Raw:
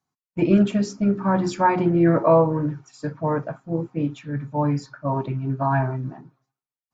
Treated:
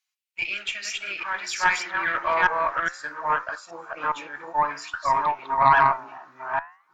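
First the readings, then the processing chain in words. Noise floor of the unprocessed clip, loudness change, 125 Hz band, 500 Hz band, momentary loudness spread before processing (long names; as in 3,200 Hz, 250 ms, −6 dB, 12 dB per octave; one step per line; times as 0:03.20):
below −85 dBFS, −2.0 dB, −20.5 dB, −10.0 dB, 11 LU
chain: delay that plays each chunk backwards 412 ms, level −2 dB
low-shelf EQ 280 Hz −5.5 dB
high-pass filter sweep 2,500 Hz → 1,100 Hz, 0:00.31–0:04.24
flanger 0.57 Hz, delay 9 ms, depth 9.2 ms, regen +83%
harmonic generator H 4 −21 dB, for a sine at −12.5 dBFS
level +8 dB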